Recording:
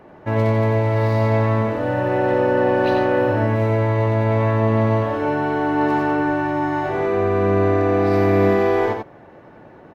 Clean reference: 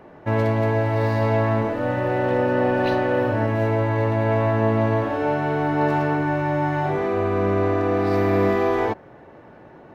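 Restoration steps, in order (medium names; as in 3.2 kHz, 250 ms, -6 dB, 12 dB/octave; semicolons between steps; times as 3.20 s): inverse comb 91 ms -4.5 dB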